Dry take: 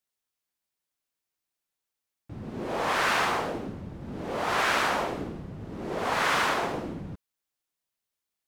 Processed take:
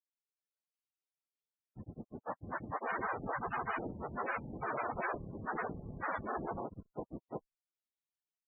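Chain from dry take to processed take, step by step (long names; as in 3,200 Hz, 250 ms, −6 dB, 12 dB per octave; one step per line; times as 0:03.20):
tube saturation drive 25 dB, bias 0.7
granular cloud, grains 20 per second, spray 682 ms
spectral peaks only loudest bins 32
level −1.5 dB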